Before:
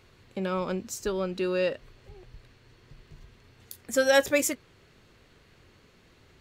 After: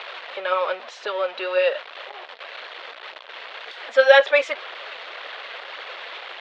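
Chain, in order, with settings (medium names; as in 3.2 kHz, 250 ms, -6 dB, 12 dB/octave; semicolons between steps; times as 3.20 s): jump at every zero crossing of -35 dBFS; phaser 1.9 Hz, delay 4.6 ms, feedback 36%; elliptic band-pass 570–3600 Hz, stop band 60 dB; trim +8.5 dB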